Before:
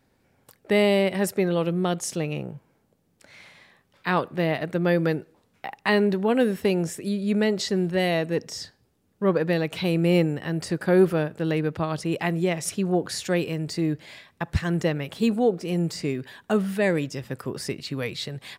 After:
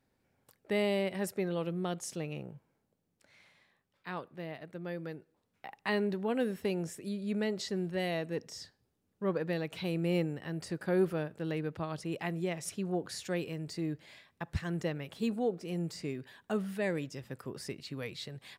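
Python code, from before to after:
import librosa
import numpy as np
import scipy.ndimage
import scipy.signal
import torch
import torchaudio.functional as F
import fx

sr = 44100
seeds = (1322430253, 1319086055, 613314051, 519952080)

y = fx.gain(x, sr, db=fx.line((2.54, -10.5), (4.47, -18.0), (5.13, -18.0), (5.76, -10.5)))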